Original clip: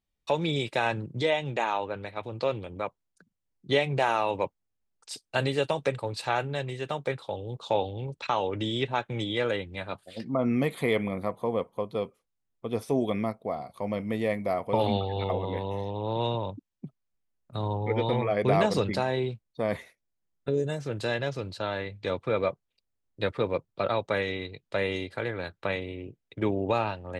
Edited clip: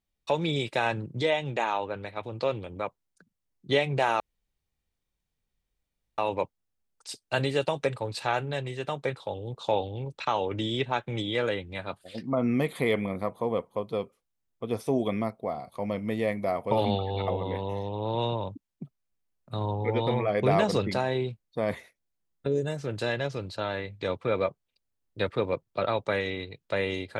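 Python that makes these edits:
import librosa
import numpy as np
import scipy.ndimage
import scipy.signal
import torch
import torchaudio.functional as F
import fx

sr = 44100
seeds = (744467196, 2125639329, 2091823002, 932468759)

y = fx.edit(x, sr, fx.insert_room_tone(at_s=4.2, length_s=1.98), tone=tone)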